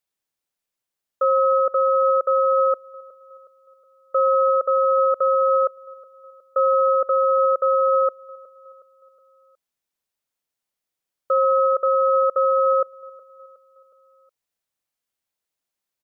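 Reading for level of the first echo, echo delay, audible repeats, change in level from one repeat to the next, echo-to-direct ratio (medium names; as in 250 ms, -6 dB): -21.5 dB, 366 ms, 3, -6.0 dB, -20.0 dB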